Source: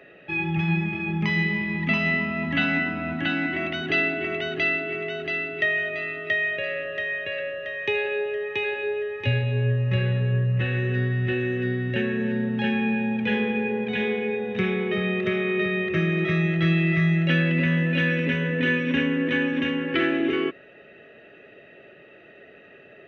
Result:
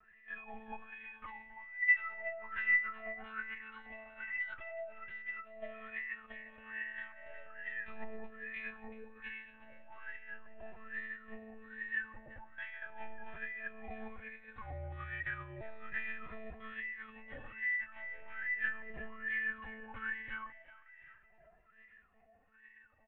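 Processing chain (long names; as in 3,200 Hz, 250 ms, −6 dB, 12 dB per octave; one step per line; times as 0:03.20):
LFO wah 1.2 Hz 710–2,000 Hz, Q 17
delay with a high-pass on its return 365 ms, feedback 40%, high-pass 1,700 Hz, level −13 dB
one-pitch LPC vocoder at 8 kHz 220 Hz
0:14.61–0:15.61: frequency shifter −80 Hz
low-shelf EQ 130 Hz +8.5 dB
barber-pole flanger 2.5 ms +0.37 Hz
level +4 dB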